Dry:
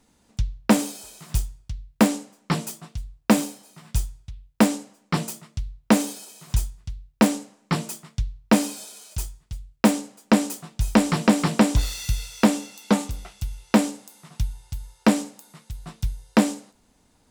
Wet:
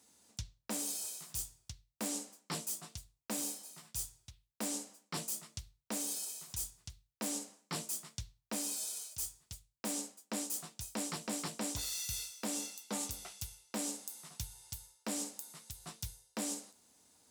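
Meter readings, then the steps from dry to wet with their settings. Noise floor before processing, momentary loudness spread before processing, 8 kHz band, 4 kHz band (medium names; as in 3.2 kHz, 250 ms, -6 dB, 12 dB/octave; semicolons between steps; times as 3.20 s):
-63 dBFS, 17 LU, -4.5 dB, -10.5 dB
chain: high-pass 64 Hz 24 dB/octave; tone controls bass -7 dB, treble +11 dB; reverse; compression 12:1, threshold -28 dBFS, peak gain reduction 16.5 dB; reverse; trim -7.5 dB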